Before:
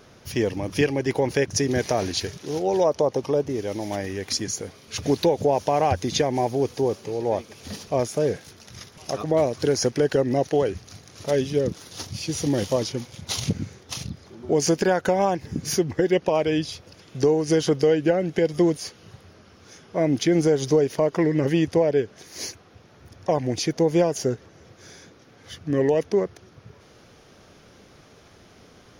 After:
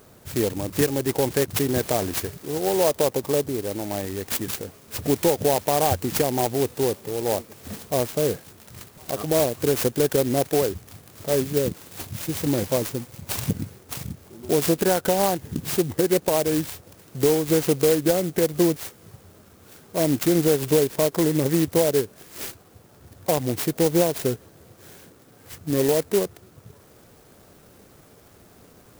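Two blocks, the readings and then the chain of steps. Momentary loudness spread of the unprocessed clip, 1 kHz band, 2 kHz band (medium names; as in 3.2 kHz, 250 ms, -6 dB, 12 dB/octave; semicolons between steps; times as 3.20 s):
13 LU, -1.0 dB, -1.0 dB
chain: sampling jitter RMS 0.1 ms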